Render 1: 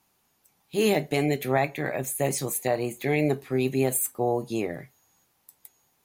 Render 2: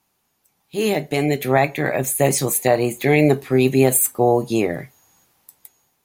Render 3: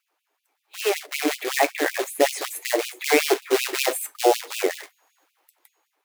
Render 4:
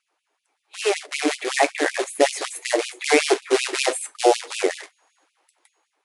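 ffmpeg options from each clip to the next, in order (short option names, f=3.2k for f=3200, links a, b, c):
-af "dynaudnorm=f=530:g=5:m=11.5dB"
-af "bass=f=250:g=11,treble=f=4k:g=-14,acrusher=bits=3:mode=log:mix=0:aa=0.000001,afftfilt=real='re*gte(b*sr/1024,270*pow(2400/270,0.5+0.5*sin(2*PI*5.3*pts/sr)))':imag='im*gte(b*sr/1024,270*pow(2400/270,0.5+0.5*sin(2*PI*5.3*pts/sr)))':win_size=1024:overlap=0.75"
-af "volume=2dB" -ar 24000 -c:a libmp3lame -b:a 128k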